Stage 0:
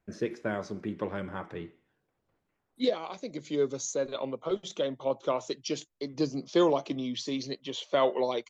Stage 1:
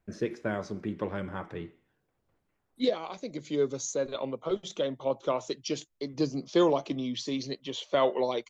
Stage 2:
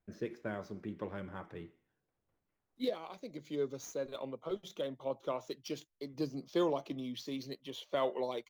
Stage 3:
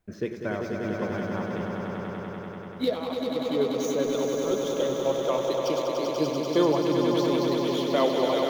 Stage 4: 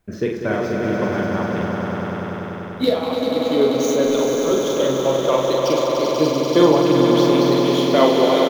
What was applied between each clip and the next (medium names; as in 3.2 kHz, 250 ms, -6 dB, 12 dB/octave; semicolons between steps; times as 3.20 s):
bass shelf 89 Hz +6.5 dB
median filter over 5 samples; trim -8 dB
echo with a slow build-up 97 ms, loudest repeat 5, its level -6 dB; trim +8.5 dB
doubling 45 ms -4 dB; trim +7.5 dB